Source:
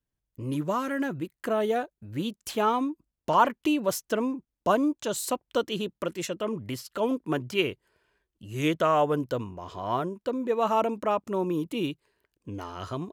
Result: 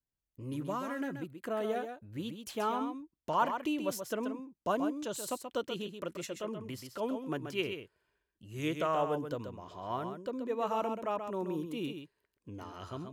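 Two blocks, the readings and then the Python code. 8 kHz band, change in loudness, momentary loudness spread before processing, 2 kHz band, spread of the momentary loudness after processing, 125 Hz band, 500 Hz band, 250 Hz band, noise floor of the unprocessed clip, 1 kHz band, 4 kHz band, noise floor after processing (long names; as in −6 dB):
−8.0 dB, −8.0 dB, 12 LU, −8.0 dB, 12 LU, −8.0 dB, −8.0 dB, −8.0 dB, below −85 dBFS, −8.0 dB, −8.0 dB, below −85 dBFS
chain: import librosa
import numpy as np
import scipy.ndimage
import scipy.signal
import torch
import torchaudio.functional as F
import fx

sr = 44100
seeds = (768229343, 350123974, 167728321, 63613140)

y = x + 10.0 ** (-7.5 / 20.0) * np.pad(x, (int(131 * sr / 1000.0), 0))[:len(x)]
y = F.gain(torch.from_numpy(y), -8.5).numpy()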